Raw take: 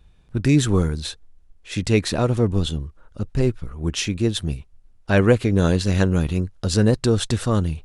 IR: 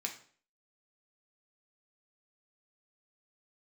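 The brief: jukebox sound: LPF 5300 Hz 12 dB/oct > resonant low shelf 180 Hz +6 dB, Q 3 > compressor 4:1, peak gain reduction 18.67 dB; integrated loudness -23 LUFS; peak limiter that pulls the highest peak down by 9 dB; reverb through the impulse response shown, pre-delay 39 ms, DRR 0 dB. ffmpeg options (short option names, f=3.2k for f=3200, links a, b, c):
-filter_complex "[0:a]alimiter=limit=-12dB:level=0:latency=1,asplit=2[a][b];[1:a]atrim=start_sample=2205,adelay=39[c];[b][c]afir=irnorm=-1:irlink=0,volume=-1dB[d];[a][d]amix=inputs=2:normalize=0,lowpass=5.3k,lowshelf=f=180:t=q:w=3:g=6,acompressor=threshold=-30dB:ratio=4,volume=9dB"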